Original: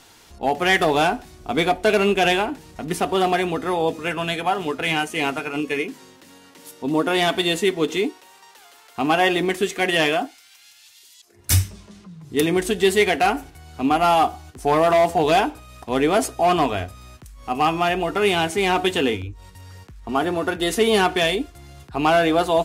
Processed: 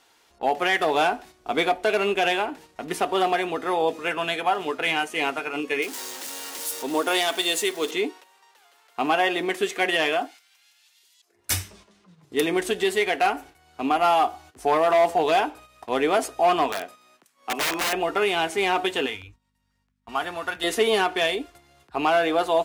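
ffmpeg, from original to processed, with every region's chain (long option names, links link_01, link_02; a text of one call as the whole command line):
ffmpeg -i in.wav -filter_complex "[0:a]asettb=1/sr,asplit=3[link_01][link_02][link_03];[link_01]atrim=end=5.824[link_04];[link_02]atrim=start=5.82:end=7.91,asetpts=PTS-STARTPTS,afade=type=in:duration=0.004:curve=qsin,afade=type=out:start_time=2.086:duration=0.004:curve=qsin,aeval=exprs='val(0)+0.5*0.0211*sgn(val(0))':channel_layout=same,bass=frequency=250:gain=-8,treble=frequency=4000:gain=11[link_05];[link_03]atrim=start=7.906[link_06];[link_04][link_05]acrossfade=duration=0.004:curve1=hsin:curve2=qsin[link_07];[link_07][link_06]acrossfade=duration=0.004:curve1=qsin:curve2=hsin,asettb=1/sr,asplit=3[link_08][link_09][link_10];[link_08]atrim=end=16.724[link_11];[link_09]atrim=start=16.72:end=17.93,asetpts=PTS-STARTPTS,afade=type=in:duration=0.004:curve=qsin,afade=type=out:start_time=1.206:duration=0.004:curve=qsin,highpass=frequency=180:width=0.5412,highpass=frequency=180:width=1.3066,aeval=exprs='(mod(7.5*val(0)+1,2)-1)/7.5':channel_layout=same[link_12];[link_10]atrim=start=17.926[link_13];[link_11][link_12]acrossfade=duration=0.004:curve1=hsin:curve2=qsin[link_14];[link_14][link_13]acrossfade=duration=0.004:curve1=qsin:curve2=hsin,asettb=1/sr,asplit=3[link_15][link_16][link_17];[link_15]atrim=end=19.064[link_18];[link_16]atrim=start=19.06:end=20.64,asetpts=PTS-STARTPTS,afade=type=in:duration=0.004:curve=qsin,afade=type=out:start_time=1.576:duration=0.004:curve=qsin,agate=range=-18dB:threshold=-39dB:ratio=16:release=100:detection=peak,equalizer=frequency=370:width=0.82:gain=-13,aeval=exprs='val(0)+0.00251*(sin(2*PI*50*n/s)+sin(2*PI*2*50*n/s)/2+sin(2*PI*3*50*n/s)/3+sin(2*PI*4*50*n/s)/4+sin(2*PI*5*50*n/s)/5)':channel_layout=same[link_19];[link_17]atrim=start=20.636[link_20];[link_18][link_19]acrossfade=duration=0.004:curve1=hsin:curve2=qsin[link_21];[link_21][link_20]acrossfade=duration=0.004:curve1=qsin:curve2=hsin,agate=range=-8dB:threshold=-40dB:ratio=16:detection=peak,bass=frequency=250:gain=-14,treble=frequency=4000:gain=-4,alimiter=limit=-11.5dB:level=0:latency=1:release=409" out.wav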